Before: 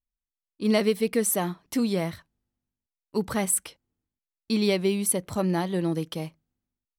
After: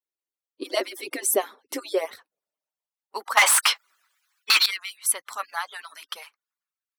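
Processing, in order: harmonic-percussive separation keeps percussive; 3.37–4.66 s: overdrive pedal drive 34 dB, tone 6.5 kHz, clips at -11.5 dBFS; high-pass sweep 370 Hz -> 1.3 kHz, 1.73–3.85 s; trim +2.5 dB

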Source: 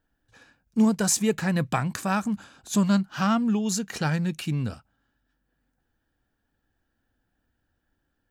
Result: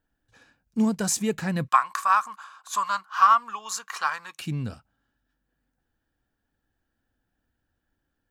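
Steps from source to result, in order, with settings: 1.68–4.39 s: resonant high-pass 1.1 kHz, resonance Q 11; trim -2.5 dB

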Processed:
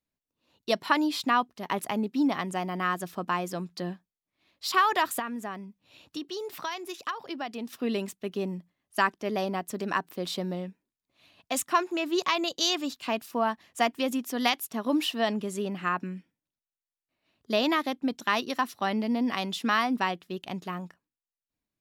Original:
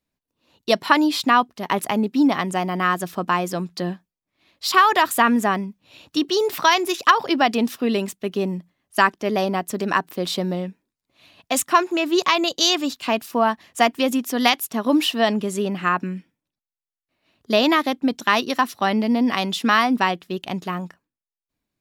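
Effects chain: 5.19–7.73 s: compression 2:1, threshold -31 dBFS, peak gain reduction 12 dB; trim -8 dB

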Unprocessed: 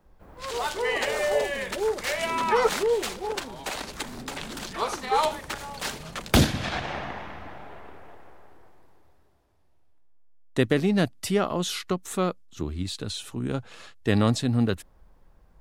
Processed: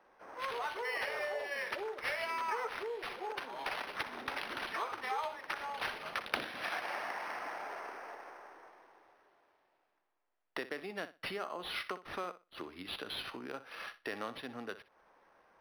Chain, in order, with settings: three-band isolator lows -16 dB, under 250 Hz, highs -23 dB, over 2.8 kHz; compression 4:1, threshold -41 dBFS, peak gain reduction 19.5 dB; tilt EQ +4.5 dB/octave; flutter echo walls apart 10.5 m, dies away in 0.26 s; decimation joined by straight lines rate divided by 6×; trim +4.5 dB

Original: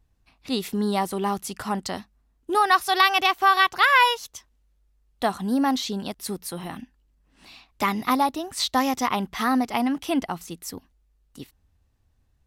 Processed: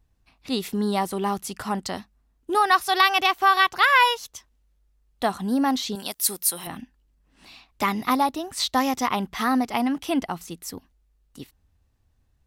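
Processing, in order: 5.95–6.67 s: RIAA curve recording

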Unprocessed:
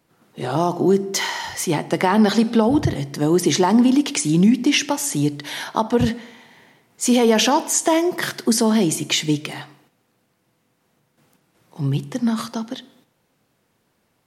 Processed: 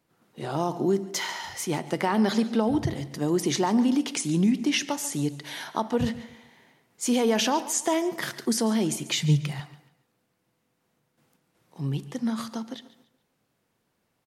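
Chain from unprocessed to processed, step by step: 9.18–9.60 s: resonant low shelf 210 Hz +7.5 dB, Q 3; feedback delay 142 ms, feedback 33%, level -17 dB; trim -7.5 dB

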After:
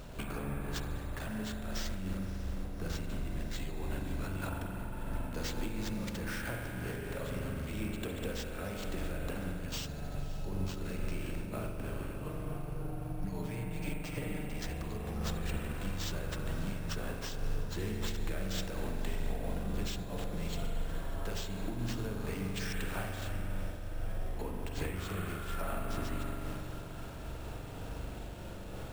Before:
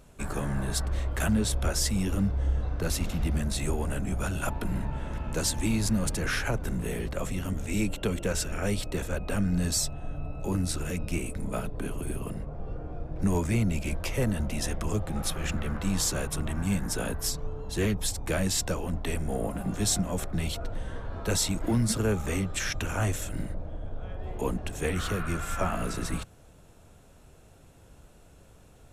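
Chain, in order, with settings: 12.22–14.49 s: comb 6.6 ms, depth 96%; compression 16:1, threshold -45 dBFS, peak gain reduction 27 dB; echo that smears into a reverb 587 ms, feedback 68%, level -14 dB; reverberation RT60 3.3 s, pre-delay 42 ms, DRR -1 dB; careless resampling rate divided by 4×, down none, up hold; random flutter of the level, depth 55%; trim +10.5 dB

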